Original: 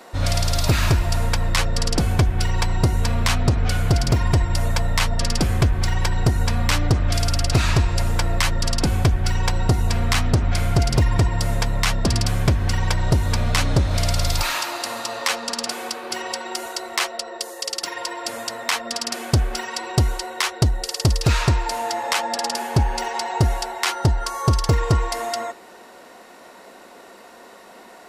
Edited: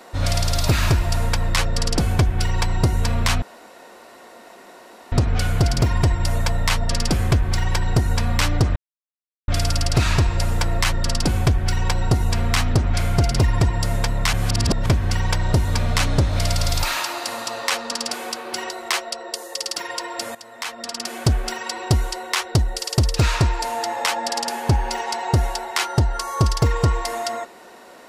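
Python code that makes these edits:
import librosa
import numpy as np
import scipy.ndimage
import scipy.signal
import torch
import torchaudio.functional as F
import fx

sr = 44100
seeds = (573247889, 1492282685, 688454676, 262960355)

y = fx.edit(x, sr, fx.insert_room_tone(at_s=3.42, length_s=1.7),
    fx.insert_silence(at_s=7.06, length_s=0.72),
    fx.reverse_span(start_s=11.91, length_s=0.53),
    fx.cut(start_s=16.28, length_s=0.49),
    fx.fade_in_from(start_s=18.42, length_s=0.93, floor_db=-15.5), tone=tone)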